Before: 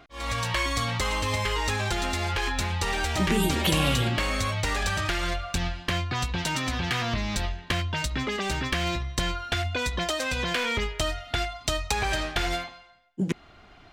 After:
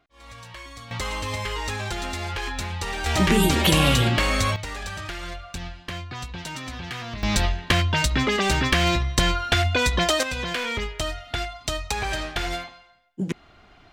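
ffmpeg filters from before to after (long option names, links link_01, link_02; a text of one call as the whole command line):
ffmpeg -i in.wav -af "asetnsamples=nb_out_samples=441:pad=0,asendcmd='0.91 volume volume -2dB;3.06 volume volume 5dB;4.56 volume volume -6dB;7.23 volume volume 7dB;10.23 volume volume -0.5dB',volume=-14dB" out.wav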